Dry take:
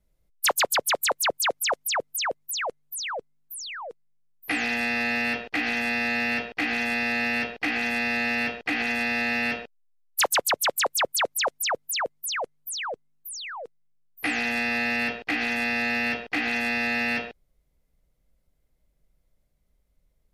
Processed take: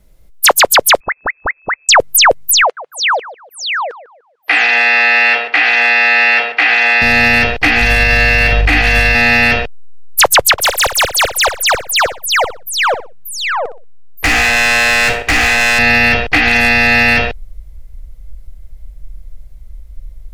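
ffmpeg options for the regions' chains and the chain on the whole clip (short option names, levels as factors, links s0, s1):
-filter_complex "[0:a]asettb=1/sr,asplit=3[s0][s1][s2];[s0]atrim=end=1.004[s3];[s1]atrim=start=1:end=1.89,asetpts=PTS-STARTPTS,afade=t=in:d=0.004:c=qsin,afade=t=out:st=0.886:d=0.004:c=qsin,acompressor=threshold=0.0224:ratio=12:attack=3.2:release=140:knee=1:detection=peak,lowpass=f=2200:t=q:w=0.5098,lowpass=f=2200:t=q:w=0.6013,lowpass=f=2200:t=q:w=0.9,lowpass=f=2200:t=q:w=2.563,afreqshift=-2600[s4];[s2]atrim=start=1.886[s5];[s3][s4]acrossfade=d=0.004:c1=hsin:c2=qsin[s6];[s6][s5]acrossfade=d=0.004:c1=qsin:c2=hsin,asettb=1/sr,asplit=3[s7][s8][s9];[s7]atrim=end=2.624[s10];[s8]atrim=start=2.62:end=7.02,asetpts=PTS-STARTPTS,afade=t=in:d=0.004:c=qsin,afade=t=out:st=4.396:d=0.004:c=qsin,highpass=660,lowpass=3800,asplit=2[s11][s12];[s12]adelay=148,lowpass=f=1200:p=1,volume=0.2,asplit=2[s13][s14];[s14]adelay=148,lowpass=f=1200:p=1,volume=0.38,asplit=2[s15][s16];[s16]adelay=148,lowpass=f=1200:p=1,volume=0.38,asplit=2[s17][s18];[s18]adelay=148,lowpass=f=1200:p=1,volume=0.38[s19];[s11][s13][s15][s17][s19]amix=inputs=5:normalize=0,atrim=end_sample=194040[s20];[s9]atrim=start=7.016[s21];[s10][s20]acrossfade=d=0.004:c1=hsin:c2=qsin[s22];[s22][s21]acrossfade=d=0.004:c1=qsin:c2=hsin,asettb=1/sr,asplit=3[s23][s24][s25];[s23]atrim=end=7.814[s26];[s24]atrim=start=7.81:end=9.15,asetpts=PTS-STARTPTS,afade=t=in:d=0.004:c=qsin,afade=t=out:st=1.336:d=0.004:c=qsin,asplit=2[s27][s28];[s28]adelay=44,volume=0.596[s29];[s27][s29]amix=inputs=2:normalize=0,atrim=end_sample=59094,aeval=exprs='val(0)+0.00631*(sin(2*PI*50*n/s)+sin(2*PI*2*50*n/s)/2+sin(2*PI*3*50*n/s)/3+sin(2*PI*4*50*n/s)/4+sin(2*PI*5*50*n/s)/5)':c=same[s30];[s25]atrim=start=9.146[s31];[s26][s30]acrossfade=d=0.004:c1=hsin:c2=qsin[s32];[s32][s31]acrossfade=d=0.004:c1=qsin:c2=hsin,asettb=1/sr,asplit=3[s33][s34][s35];[s33]atrim=end=10.524[s36];[s34]atrim=start=10.52:end=15.79,asetpts=PTS-STARTPTS,afade=t=in:d=0.004:c=qsin,afade=t=out:st=5.266:d=0.004:c=qsin,bass=f=250:g=-8,treble=f=4000:g=-10,volume=29.9,asoftclip=hard,volume=0.0335,aecho=1:1:61|122|183:0.282|0.0789|0.0221,atrim=end_sample=232407[s37];[s35]atrim=start=15.786[s38];[s36][s37]acrossfade=d=0.004:c1=hsin:c2=qsin[s39];[s39][s38]acrossfade=d=0.004:c1=qsin:c2=hsin,asubboost=boost=10.5:cutoff=74,acontrast=37,alimiter=level_in=6.31:limit=0.891:release=50:level=0:latency=1,volume=0.891"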